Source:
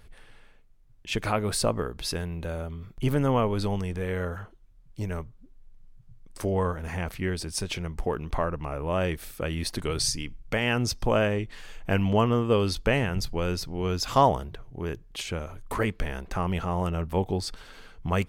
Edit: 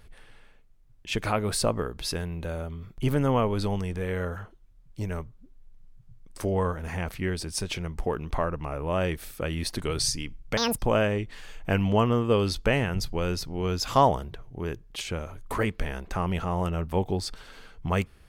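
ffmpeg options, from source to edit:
-filter_complex "[0:a]asplit=3[a][b][c];[a]atrim=end=10.574[d];[b]atrim=start=10.57:end=10.99,asetpts=PTS-STARTPTS,asetrate=85554,aresample=44100,atrim=end_sample=9547,asetpts=PTS-STARTPTS[e];[c]atrim=start=10.986[f];[d][e]acrossfade=d=0.004:c1=hsin:c2=hsin[g];[g][f]acrossfade=d=0.004:c1=hsin:c2=hsin"

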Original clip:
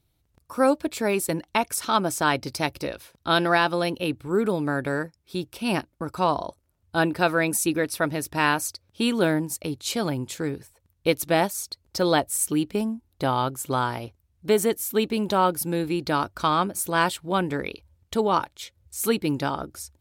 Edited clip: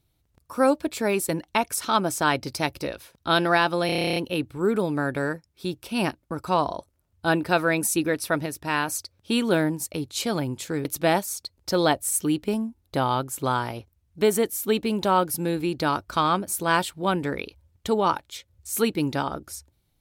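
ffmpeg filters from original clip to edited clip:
-filter_complex "[0:a]asplit=14[a][b][c][d][e][f][g][h][i][j][k][l][m][n];[a]atrim=end=3.892[o];[b]atrim=start=3.858:end=3.892[p];[c]atrim=start=3.858:end=3.892[q];[d]atrim=start=3.858:end=3.892[r];[e]atrim=start=3.858:end=3.892[s];[f]atrim=start=3.858:end=3.892[t];[g]atrim=start=3.858:end=3.892[u];[h]atrim=start=3.858:end=3.892[v];[i]atrim=start=3.858:end=3.892[w];[j]atrim=start=3.858:end=3.892[x];[k]atrim=start=3.858:end=8.162[y];[l]atrim=start=8.158:end=8.582,asetpts=PTS-STARTPTS,volume=-3.5dB[z];[m]atrim=start=8.578:end=10.552[aa];[n]atrim=start=11.118[ab];[o][p]acrossfade=d=0.004:c1=hsin:c2=hsin[ac];[ac][q]acrossfade=d=0.004:c1=hsin:c2=hsin[ad];[ad][r]acrossfade=d=0.004:c1=hsin:c2=hsin[ae];[ae][s]acrossfade=d=0.004:c1=hsin:c2=hsin[af];[af][t]acrossfade=d=0.004:c1=hsin:c2=hsin[ag];[ag][u]acrossfade=d=0.004:c1=hsin:c2=hsin[ah];[ah][v]acrossfade=d=0.004:c1=hsin:c2=hsin[ai];[ai][w]acrossfade=d=0.004:c1=hsin:c2=hsin[aj];[aj][x]acrossfade=d=0.004:c1=hsin:c2=hsin[ak];[ak][y]acrossfade=d=0.004:c1=hsin:c2=hsin[al];[al][z]acrossfade=d=0.004:c1=hsin:c2=hsin[am];[am][aa]acrossfade=d=0.004:c1=hsin:c2=hsin[an];[an][ab]acrossfade=d=0.004:c1=hsin:c2=hsin"

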